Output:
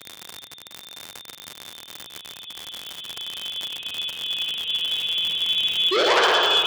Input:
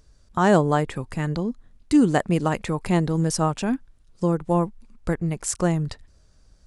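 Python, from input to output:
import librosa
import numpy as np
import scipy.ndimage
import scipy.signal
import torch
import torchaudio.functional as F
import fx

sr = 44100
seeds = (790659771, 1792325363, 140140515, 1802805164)

p1 = fx.quant_companded(x, sr, bits=4)
p2 = x + (p1 * librosa.db_to_amplitude(-7.5))
p3 = fx.freq_invert(p2, sr, carrier_hz=3600)
p4 = fx.paulstretch(p3, sr, seeds[0], factor=29.0, window_s=0.5, from_s=3.96)
p5 = fx.spec_paint(p4, sr, seeds[1], shape='rise', start_s=5.91, length_s=0.31, low_hz=340.0, high_hz=1800.0, level_db=-18.0)
p6 = fx.low_shelf(p5, sr, hz=280.0, db=6.5)
p7 = p6 + fx.room_flutter(p6, sr, wall_m=11.6, rt60_s=0.76, dry=0)
p8 = fx.room_shoebox(p7, sr, seeds[2], volume_m3=2400.0, walls='mixed', distance_m=4.9)
p9 = fx.dmg_crackle(p8, sr, seeds[3], per_s=100.0, level_db=-14.0)
p10 = scipy.signal.sosfilt(scipy.signal.butter(2, 77.0, 'highpass', fs=sr, output='sos'), p9)
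p11 = fx.transformer_sat(p10, sr, knee_hz=3500.0)
y = p11 * librosa.db_to_amplitude(-5.5)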